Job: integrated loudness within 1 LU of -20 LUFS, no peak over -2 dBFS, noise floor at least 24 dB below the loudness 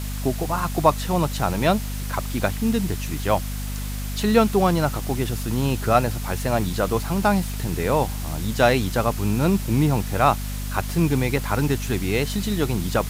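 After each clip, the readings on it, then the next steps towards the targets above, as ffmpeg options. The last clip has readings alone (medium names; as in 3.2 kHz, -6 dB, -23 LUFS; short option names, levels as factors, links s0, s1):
hum 50 Hz; highest harmonic 250 Hz; hum level -26 dBFS; noise floor -29 dBFS; noise floor target -47 dBFS; loudness -22.5 LUFS; peak level -3.0 dBFS; loudness target -20.0 LUFS
-> -af "bandreject=f=50:t=h:w=6,bandreject=f=100:t=h:w=6,bandreject=f=150:t=h:w=6,bandreject=f=200:t=h:w=6,bandreject=f=250:t=h:w=6"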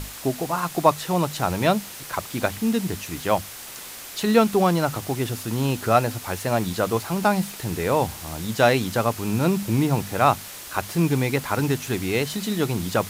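hum not found; noise floor -38 dBFS; noise floor target -48 dBFS
-> -af "afftdn=nr=10:nf=-38"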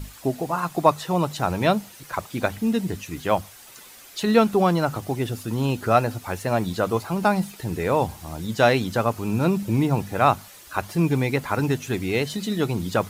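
noise floor -46 dBFS; noise floor target -48 dBFS
-> -af "afftdn=nr=6:nf=-46"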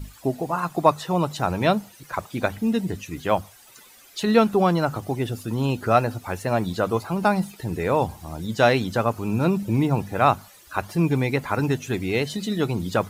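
noise floor -50 dBFS; loudness -23.5 LUFS; peak level -3.0 dBFS; loudness target -20.0 LUFS
-> -af "volume=1.5,alimiter=limit=0.794:level=0:latency=1"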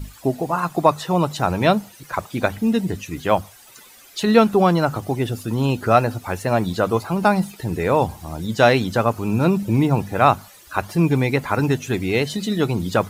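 loudness -20.5 LUFS; peak level -2.0 dBFS; noise floor -47 dBFS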